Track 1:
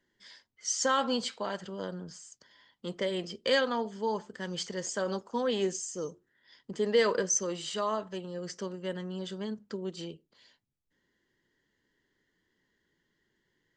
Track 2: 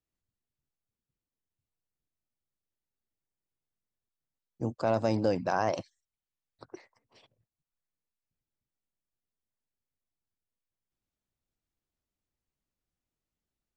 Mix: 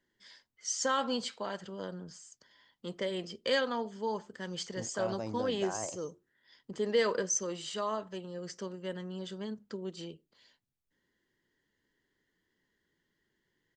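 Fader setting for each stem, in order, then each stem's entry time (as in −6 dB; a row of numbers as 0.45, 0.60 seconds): −3.0, −11.0 decibels; 0.00, 0.15 seconds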